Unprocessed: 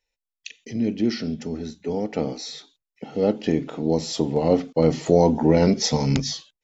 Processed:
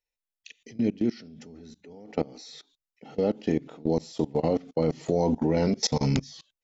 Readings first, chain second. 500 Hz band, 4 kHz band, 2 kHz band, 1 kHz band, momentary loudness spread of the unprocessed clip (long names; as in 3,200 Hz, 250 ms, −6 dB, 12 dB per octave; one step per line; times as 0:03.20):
−6.5 dB, −6.5 dB, −6.5 dB, −6.5 dB, 15 LU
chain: output level in coarse steps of 23 dB